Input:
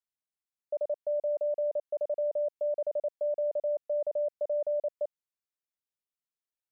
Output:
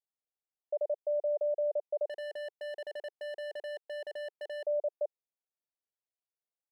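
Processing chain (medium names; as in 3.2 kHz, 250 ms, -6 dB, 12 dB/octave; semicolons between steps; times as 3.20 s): Chebyshev band-pass 410–820 Hz, order 2; 2.07–4.65 s: hard clipper -38 dBFS, distortion -5 dB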